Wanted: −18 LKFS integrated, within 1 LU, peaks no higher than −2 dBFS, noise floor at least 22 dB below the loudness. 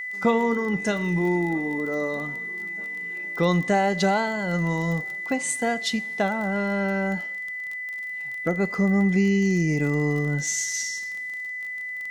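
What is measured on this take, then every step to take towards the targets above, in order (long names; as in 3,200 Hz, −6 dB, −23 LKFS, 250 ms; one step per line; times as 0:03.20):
crackle rate 26 per second; interfering tone 2,000 Hz; level of the tone −30 dBFS; integrated loudness −25.0 LKFS; sample peak −10.5 dBFS; target loudness −18.0 LKFS
→ click removal
notch filter 2,000 Hz, Q 30
level +7 dB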